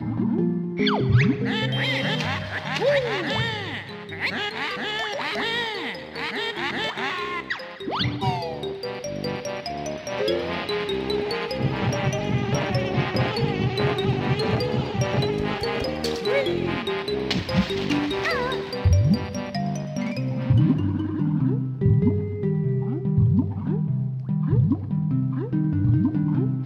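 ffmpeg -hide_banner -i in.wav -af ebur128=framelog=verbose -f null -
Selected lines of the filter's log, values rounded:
Integrated loudness:
  I:         -24.4 LUFS
  Threshold: -34.4 LUFS
Loudness range:
  LRA:         4.5 LU
  Threshold: -44.6 LUFS
  LRA low:   -27.4 LUFS
  LRA high:  -22.9 LUFS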